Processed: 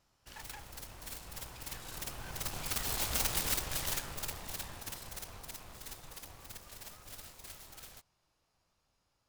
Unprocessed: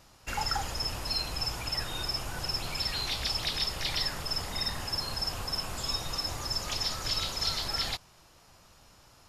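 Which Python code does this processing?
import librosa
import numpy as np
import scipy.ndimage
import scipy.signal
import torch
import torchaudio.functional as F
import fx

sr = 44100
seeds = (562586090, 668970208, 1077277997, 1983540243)

y = fx.self_delay(x, sr, depth_ms=0.78)
y = fx.doppler_pass(y, sr, speed_mps=12, closest_m=6.3, pass_at_s=3.25)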